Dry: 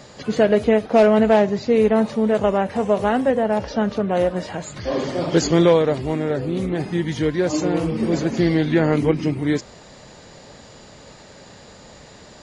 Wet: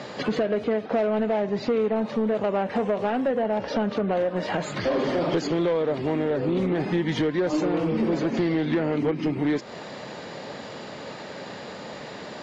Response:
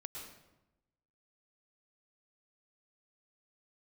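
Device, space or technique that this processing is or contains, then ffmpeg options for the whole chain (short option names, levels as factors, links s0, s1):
AM radio: -af "highpass=180,lowpass=3700,acompressor=threshold=0.0447:ratio=6,asoftclip=type=tanh:threshold=0.0596,volume=2.51"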